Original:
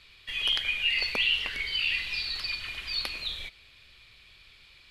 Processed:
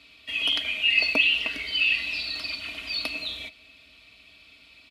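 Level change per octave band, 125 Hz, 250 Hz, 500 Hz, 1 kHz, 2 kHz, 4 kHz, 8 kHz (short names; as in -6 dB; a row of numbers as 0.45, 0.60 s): n/a, +11.0 dB, +6.5 dB, +2.0 dB, +5.0 dB, +2.0 dB, +1.0 dB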